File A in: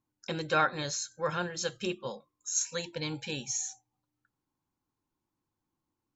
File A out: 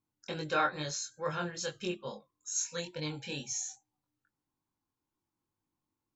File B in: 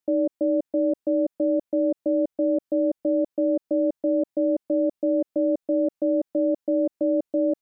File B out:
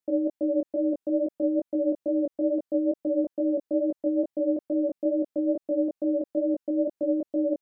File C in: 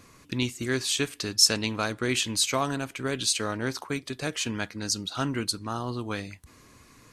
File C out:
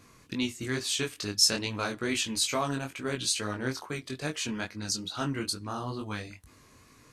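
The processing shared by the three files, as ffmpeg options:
-af "flanger=delay=19.5:depth=3.8:speed=2.3"

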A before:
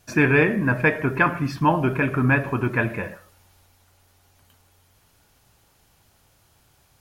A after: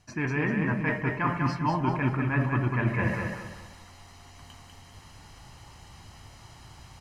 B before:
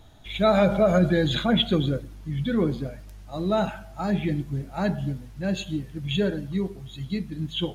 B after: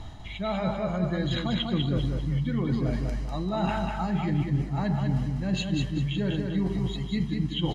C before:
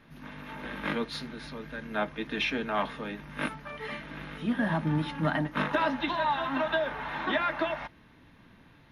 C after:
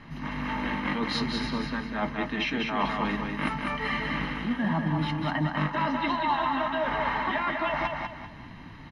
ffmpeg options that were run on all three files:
-af "lowpass=6400,areverse,acompressor=threshold=0.0178:ratio=10,areverse,bandreject=f=3500:w=9,aecho=1:1:1:0.43,aecho=1:1:196|392|588|784:0.631|0.215|0.0729|0.0248,volume=2.82"

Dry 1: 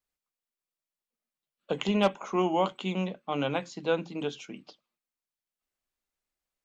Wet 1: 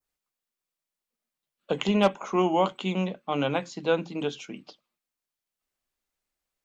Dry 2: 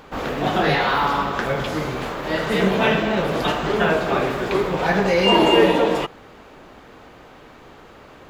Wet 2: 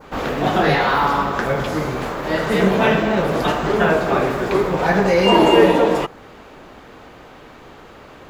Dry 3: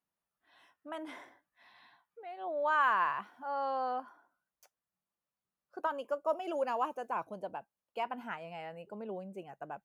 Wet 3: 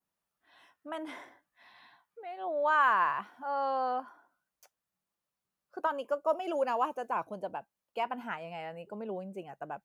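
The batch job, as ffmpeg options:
-af "adynamicequalizer=threshold=0.01:dfrequency=3200:dqfactor=1.2:tfrequency=3200:tqfactor=1.2:attack=5:release=100:ratio=0.375:range=2.5:mode=cutabove:tftype=bell,volume=1.41"

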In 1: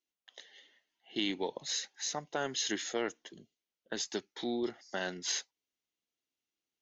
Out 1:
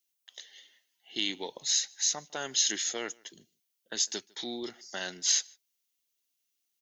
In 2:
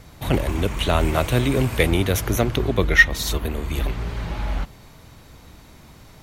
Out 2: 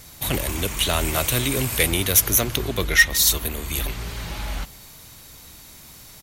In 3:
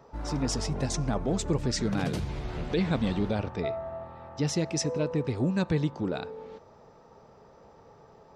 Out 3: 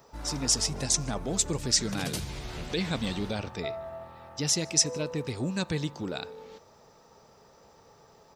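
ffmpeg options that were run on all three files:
-filter_complex "[0:a]asplit=2[s0][s1];[s1]adelay=151.6,volume=0.0447,highshelf=f=4000:g=-3.41[s2];[s0][s2]amix=inputs=2:normalize=0,acontrast=69,crystalizer=i=5.5:c=0,volume=0.282"

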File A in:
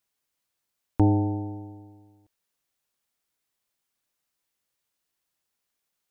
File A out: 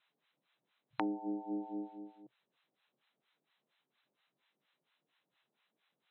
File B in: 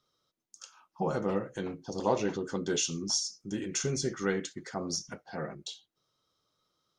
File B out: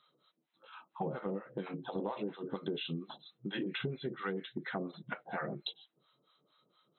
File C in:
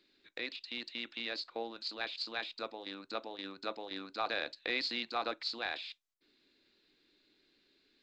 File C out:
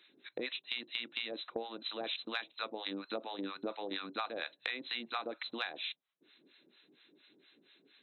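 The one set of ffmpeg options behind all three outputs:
-filter_complex "[0:a]afftfilt=real='re*between(b*sr/4096,120,4100)':imag='im*between(b*sr/4096,120,4100)':win_size=4096:overlap=0.75,acrossover=split=710[s0][s1];[s0]aeval=exprs='val(0)*(1-1/2+1/2*cos(2*PI*4.3*n/s))':c=same[s2];[s1]aeval=exprs='val(0)*(1-1/2-1/2*cos(2*PI*4.3*n/s))':c=same[s3];[s2][s3]amix=inputs=2:normalize=0,acompressor=threshold=0.00562:ratio=12,volume=3.55"

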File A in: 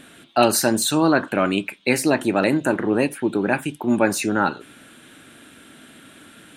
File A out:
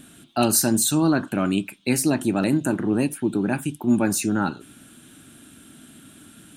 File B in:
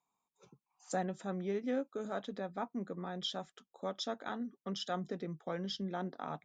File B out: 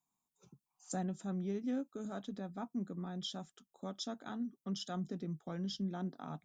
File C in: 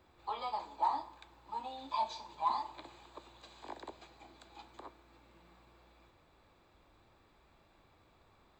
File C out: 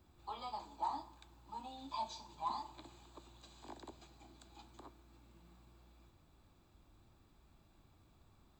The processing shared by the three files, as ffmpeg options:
-af "equalizer=f=500:t=o:w=1:g=-11,equalizer=f=1000:t=o:w=1:g=-6,equalizer=f=2000:t=o:w=1:g=-11,equalizer=f=4000:t=o:w=1:g=-5,volume=1.5"

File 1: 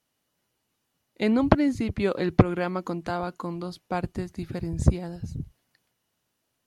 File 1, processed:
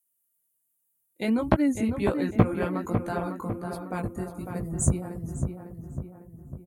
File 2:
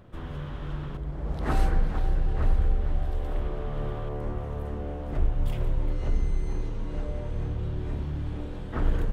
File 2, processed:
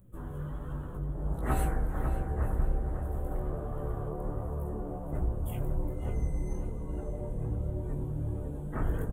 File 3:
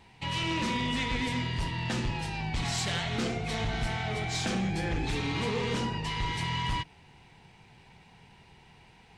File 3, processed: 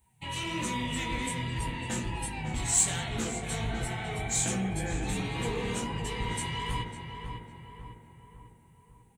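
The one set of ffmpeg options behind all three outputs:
-filter_complex "[0:a]afftdn=nr=17:nf=-45,flanger=delay=15.5:depth=6.5:speed=1.3,aexciter=amount=10:drive=9.7:freq=7600,asplit=2[s0][s1];[s1]adelay=551,lowpass=f=2000:p=1,volume=0.501,asplit=2[s2][s3];[s3]adelay=551,lowpass=f=2000:p=1,volume=0.52,asplit=2[s4][s5];[s5]adelay=551,lowpass=f=2000:p=1,volume=0.52,asplit=2[s6][s7];[s7]adelay=551,lowpass=f=2000:p=1,volume=0.52,asplit=2[s8][s9];[s9]adelay=551,lowpass=f=2000:p=1,volume=0.52,asplit=2[s10][s11];[s11]adelay=551,lowpass=f=2000:p=1,volume=0.52[s12];[s2][s4][s6][s8][s10][s12]amix=inputs=6:normalize=0[s13];[s0][s13]amix=inputs=2:normalize=0"

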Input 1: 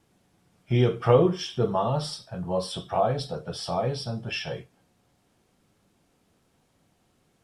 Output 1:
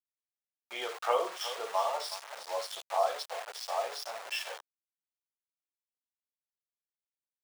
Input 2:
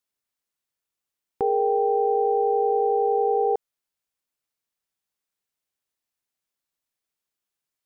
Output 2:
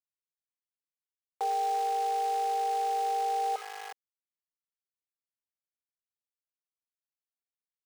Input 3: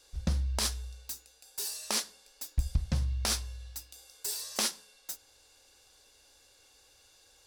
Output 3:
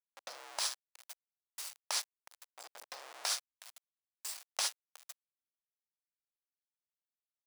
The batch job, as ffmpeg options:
-af "afftdn=nr=17:nf=-44,aecho=1:1:59|367:0.211|0.224,aeval=exprs='val(0)*gte(abs(val(0)),0.0237)':c=same,highpass=f=640:w=0.5412,highpass=f=640:w=1.3066,equalizer=f=14000:t=o:w=0.39:g=-7,volume=0.75"

